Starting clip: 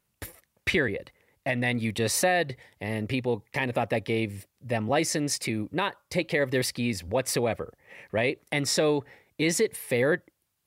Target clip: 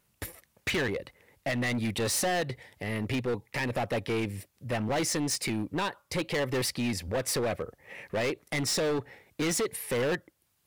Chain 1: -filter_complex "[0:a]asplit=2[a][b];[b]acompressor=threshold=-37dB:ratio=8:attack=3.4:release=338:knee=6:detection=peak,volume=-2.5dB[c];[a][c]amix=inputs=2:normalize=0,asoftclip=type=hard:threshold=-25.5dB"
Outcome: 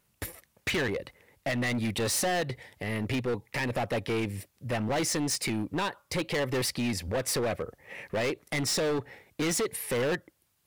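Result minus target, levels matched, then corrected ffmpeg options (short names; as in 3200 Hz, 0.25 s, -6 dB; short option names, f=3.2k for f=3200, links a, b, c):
compressor: peak gain reduction -9 dB
-filter_complex "[0:a]asplit=2[a][b];[b]acompressor=threshold=-47.5dB:ratio=8:attack=3.4:release=338:knee=6:detection=peak,volume=-2.5dB[c];[a][c]amix=inputs=2:normalize=0,asoftclip=type=hard:threshold=-25.5dB"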